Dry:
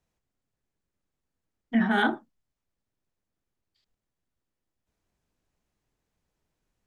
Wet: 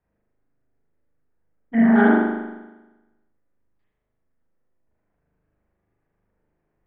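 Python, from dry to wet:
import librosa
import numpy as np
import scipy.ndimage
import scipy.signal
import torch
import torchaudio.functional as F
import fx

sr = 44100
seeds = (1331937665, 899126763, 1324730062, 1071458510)

y = fx.filter_lfo_lowpass(x, sr, shape='square', hz=8.7, low_hz=570.0, high_hz=1900.0, q=1.7)
y = fx.high_shelf(y, sr, hz=2500.0, db=-10.5)
y = fx.rev_spring(y, sr, rt60_s=1.1, pass_ms=(39,), chirp_ms=70, drr_db=-6.5)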